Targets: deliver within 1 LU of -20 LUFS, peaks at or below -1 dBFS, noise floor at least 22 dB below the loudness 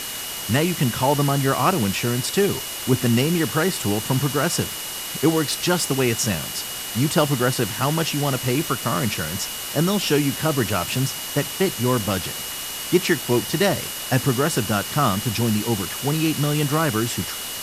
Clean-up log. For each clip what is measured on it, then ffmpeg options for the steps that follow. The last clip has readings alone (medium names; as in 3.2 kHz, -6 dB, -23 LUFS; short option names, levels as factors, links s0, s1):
steady tone 2.9 kHz; tone level -36 dBFS; noise floor -31 dBFS; noise floor target -44 dBFS; loudness -21.5 LUFS; peak level -4.5 dBFS; loudness target -20.0 LUFS
-> -af "bandreject=f=2900:w=30"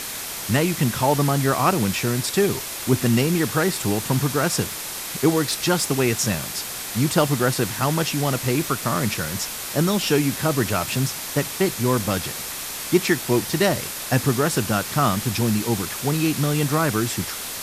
steady tone not found; noise floor -32 dBFS; noise floor target -44 dBFS
-> -af "afftdn=nr=12:nf=-32"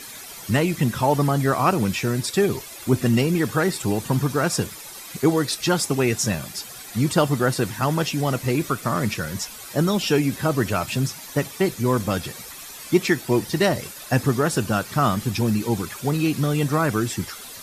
noise floor -39 dBFS; noise floor target -45 dBFS
-> -af "afftdn=nr=6:nf=-39"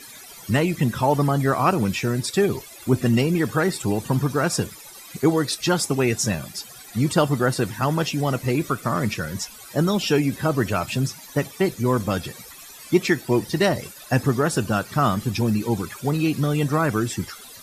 noise floor -43 dBFS; noise floor target -45 dBFS
-> -af "afftdn=nr=6:nf=-43"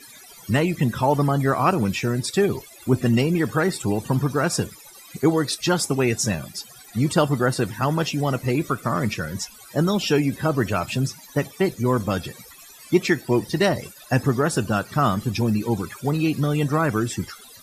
noise floor -46 dBFS; loudness -23.0 LUFS; peak level -5.5 dBFS; loudness target -20.0 LUFS
-> -af "volume=1.41"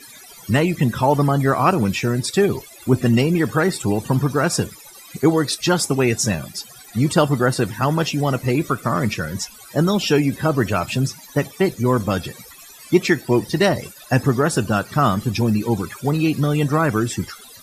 loudness -20.0 LUFS; peak level -2.5 dBFS; noise floor -43 dBFS